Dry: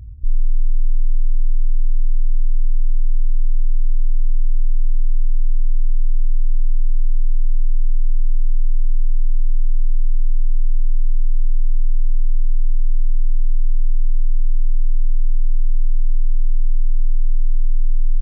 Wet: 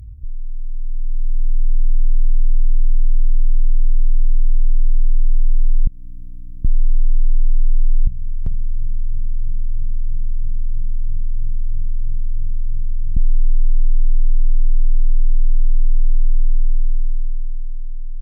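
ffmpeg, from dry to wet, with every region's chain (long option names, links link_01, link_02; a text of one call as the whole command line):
ffmpeg -i in.wav -filter_complex "[0:a]asettb=1/sr,asplit=3[link_01][link_02][link_03];[link_01]atrim=end=5.874[link_04];[link_02]atrim=start=5.87:end=6.65,asetpts=PTS-STARTPTS,afade=type=in:duration=0.004:curve=qsin,afade=type=out:start_time=0.776:duration=0.004:curve=qsin,highpass=51,bass=frequency=250:gain=-14,treble=frequency=4000:gain=-4,aeval=exprs='val(0)+0.00178*(sin(2*PI*60*n/s)+sin(2*PI*2*60*n/s)/2+sin(2*PI*3*60*n/s)/3+sin(2*PI*4*60*n/s)/4+sin(2*PI*5*60*n/s)/5)':channel_layout=same[link_05];[link_03]atrim=start=6.646[link_06];[link_04][link_05]acrossfade=duration=0.004:curve1=hsin:curve2=qsin[link_07];[link_07][link_06]acrossfade=duration=0.004:curve1=qsin:curve2=hsin,asettb=1/sr,asplit=3[link_08][link_09][link_10];[link_08]atrim=end=8.074[link_11];[link_09]atrim=start=8.07:end=13.17,asetpts=PTS-STARTPTS,afade=type=in:duration=0.004:curve=qsin,afade=type=out:start_time=5.096:duration=0.004:curve=qsin,highpass=58,bandreject=frequency=60:width_type=h:width=6,bandreject=frequency=120:width_type=h:width=6,bandreject=frequency=180:width_type=h:width=6,aecho=1:1:394:0.355,atrim=end_sample=224910[link_12];[link_10]atrim=start=13.166[link_13];[link_11][link_12]acrossfade=duration=0.004:curve1=hsin:curve2=qsin[link_14];[link_14][link_13]acrossfade=duration=0.004:curve1=qsin:curve2=hsin,aemphasis=mode=production:type=cd,alimiter=limit=-18.5dB:level=0:latency=1:release=205,dynaudnorm=framelen=120:gausssize=21:maxgain=13dB" out.wav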